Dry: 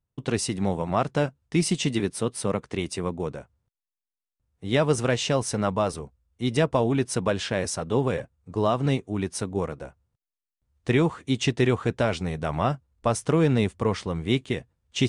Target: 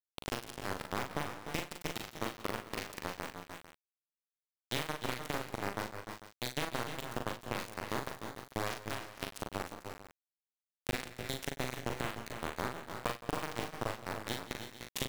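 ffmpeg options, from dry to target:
-filter_complex "[0:a]highpass=53,highshelf=f=6.3k:g=2.5,bandreject=f=50:t=h:w=6,bandreject=f=100:t=h:w=6,bandreject=f=150:t=h:w=6,bandreject=f=200:t=h:w=6,bandreject=f=250:t=h:w=6,acompressor=threshold=-33dB:ratio=4,aeval=exprs='val(0)*gte(abs(val(0)),0.0531)':c=same,asplit=2[a][b];[b]adelay=40,volume=-4.5dB[c];[a][c]amix=inputs=2:normalize=0,asplit=2[d][e];[e]aecho=0:1:55|166|183|299|317|446:0.211|0.126|0.106|0.316|0.316|0.158[f];[d][f]amix=inputs=2:normalize=0,adynamicequalizer=threshold=0.00316:dfrequency=2200:dqfactor=0.7:tfrequency=2200:tqfactor=0.7:attack=5:release=100:ratio=0.375:range=2.5:mode=cutabove:tftype=highshelf,volume=1.5dB"

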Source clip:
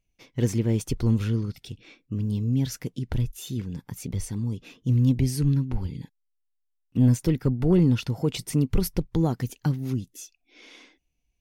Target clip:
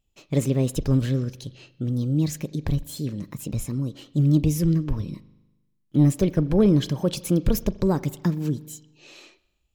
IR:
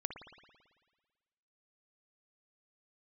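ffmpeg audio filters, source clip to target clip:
-filter_complex "[0:a]asetrate=51597,aresample=44100,asplit=2[a][b];[1:a]atrim=start_sample=2205,asetrate=61740,aresample=44100[c];[b][c]afir=irnorm=-1:irlink=0,volume=-7.5dB[d];[a][d]amix=inputs=2:normalize=0"

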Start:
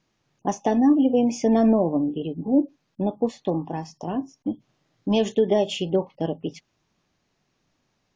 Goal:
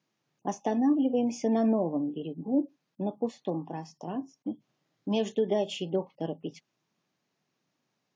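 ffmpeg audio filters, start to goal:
-af "highpass=f=130:w=0.5412,highpass=f=130:w=1.3066,volume=-7dB"

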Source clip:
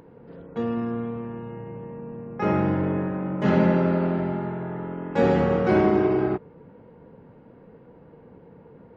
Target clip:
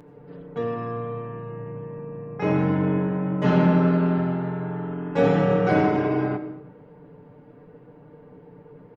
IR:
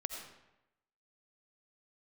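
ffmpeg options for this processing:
-filter_complex "[0:a]aecho=1:1:6.8:0.83,asplit=2[a][b];[1:a]atrim=start_sample=2205[c];[b][c]afir=irnorm=-1:irlink=0,volume=-2.5dB[d];[a][d]amix=inputs=2:normalize=0,volume=-5.5dB"

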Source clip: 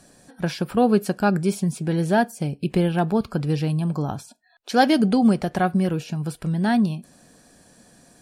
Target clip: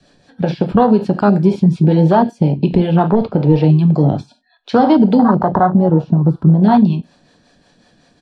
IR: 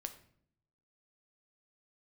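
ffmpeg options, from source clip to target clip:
-filter_complex "[0:a]asettb=1/sr,asplit=3[a][b][c];[a]atrim=end=3.064[d];[b]atrim=start=3.06:end=3.64,asetpts=PTS-STARTPTS,afade=t=in:d=0.004:c=qsin,afade=t=out:st=0.576:d=0.004:c=qsin,asplit=2[e][f];[f]highpass=f=720:p=1,volume=14dB,asoftclip=type=tanh:threshold=-10dB[g];[e][g]amix=inputs=2:normalize=0,lowpass=f=1k:p=1,volume=-6dB[h];[c]atrim=start=3.636[i];[d][h]acrossfade=d=0.004:c1=hsin:c2=qsin[j];[j][i]acrossfade=d=0.004:c1=qsin:c2=hsin,acrossover=split=130|930|2400[k][l][m][n];[k]acompressor=threshold=-41dB:ratio=4[o];[l]acompressor=threshold=-27dB:ratio=4[p];[m]acompressor=threshold=-38dB:ratio=4[q];[n]acompressor=threshold=-38dB:ratio=4[r];[o][p][q][r]amix=inputs=4:normalize=0,lowpass=f=3.8k:t=q:w=1.8,asettb=1/sr,asplit=3[s][t][u];[s]atrim=end=5.224[v];[t]atrim=start=5.22:end=6.63,asetpts=PTS-STARTPTS,afade=t=in:d=0.004:c=qsin,afade=t=out:st=1.406:d=0.004:c=qsin,highshelf=f=1.6k:t=q:w=3:g=-12[w];[u]atrim=start=6.626[x];[v][w]acrossfade=d=0.004:c1=hsin:c2=qsin[y];[y][x]acrossfade=d=0.004:c1=qsin:c2=hsin,asplit=2[z][aa];[aa]adelay=93.29,volume=-22dB,highshelf=f=4k:g=-2.1[ab];[z][ab]amix=inputs=2:normalize=0[ac];[1:a]atrim=start_sample=2205,afade=t=out:st=0.13:d=0.01,atrim=end_sample=6174[ad];[ac][ad]afir=irnorm=-1:irlink=0,acrossover=split=420[ae][af];[ae]aeval=exprs='val(0)*(1-0.5/2+0.5/2*cos(2*PI*5.4*n/s))':c=same[ag];[af]aeval=exprs='val(0)*(1-0.5/2-0.5/2*cos(2*PI*5.4*n/s))':c=same[ah];[ag][ah]amix=inputs=2:normalize=0,afwtdn=0.0178,adynamicequalizer=threshold=0.00141:dfrequency=940:dqfactor=5.5:tfrequency=940:tqfactor=5.5:attack=5:release=100:ratio=0.375:range=4:mode=boostabove:tftype=bell,alimiter=level_in=23dB:limit=-1dB:release=50:level=0:latency=1,volume=-1dB"

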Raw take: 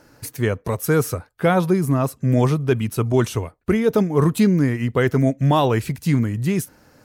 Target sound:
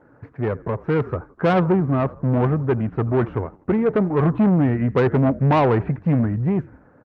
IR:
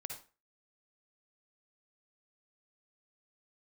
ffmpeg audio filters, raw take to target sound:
-filter_complex "[0:a]asplit=3[a][b][c];[a]afade=t=out:st=1.79:d=0.02[d];[b]aeval=exprs='if(lt(val(0),0),0.447*val(0),val(0))':c=same,afade=t=in:st=1.79:d=0.02,afade=t=out:st=4.23:d=0.02[e];[c]afade=t=in:st=4.23:d=0.02[f];[d][e][f]amix=inputs=3:normalize=0,lowpass=f=1.6k:w=0.5412,lowpass=f=1.6k:w=1.3066,asplit=5[g][h][i][j][k];[h]adelay=82,afreqshift=-44,volume=-22.5dB[l];[i]adelay=164,afreqshift=-88,volume=-28.2dB[m];[j]adelay=246,afreqshift=-132,volume=-33.9dB[n];[k]adelay=328,afreqshift=-176,volume=-39.5dB[o];[g][l][m][n][o]amix=inputs=5:normalize=0,asoftclip=type=tanh:threshold=-17dB,highpass=f=94:p=1,dynaudnorm=f=210:g=11:m=4dB,volume=1.5dB" -ar 48000 -c:a libopus -b:a 32k

